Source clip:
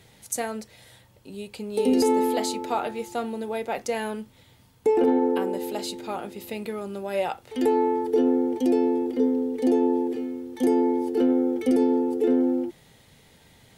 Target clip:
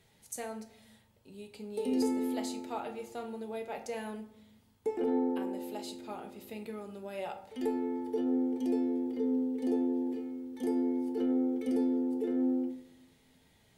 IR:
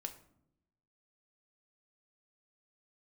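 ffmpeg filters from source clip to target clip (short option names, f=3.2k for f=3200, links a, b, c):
-filter_complex "[1:a]atrim=start_sample=2205,asetrate=40572,aresample=44100[a];[0:a][a]afir=irnorm=-1:irlink=0,volume=-9dB"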